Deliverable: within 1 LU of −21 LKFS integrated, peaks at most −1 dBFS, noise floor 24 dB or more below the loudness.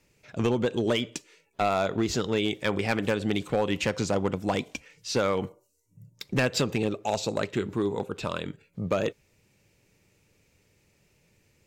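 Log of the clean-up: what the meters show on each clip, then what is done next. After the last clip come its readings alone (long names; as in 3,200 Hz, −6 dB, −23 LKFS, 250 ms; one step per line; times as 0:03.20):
share of clipped samples 0.6%; peaks flattened at −17.5 dBFS; integrated loudness −28.5 LKFS; sample peak −17.5 dBFS; target loudness −21.0 LKFS
→ clipped peaks rebuilt −17.5 dBFS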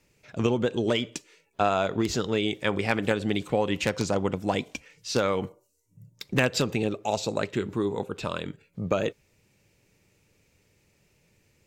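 share of clipped samples 0.0%; integrated loudness −28.0 LKFS; sample peak −8.5 dBFS; target loudness −21.0 LKFS
→ level +7 dB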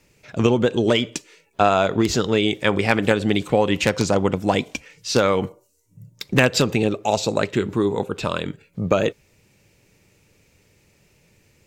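integrated loudness −21.0 LKFS; sample peak −1.5 dBFS; background noise floor −61 dBFS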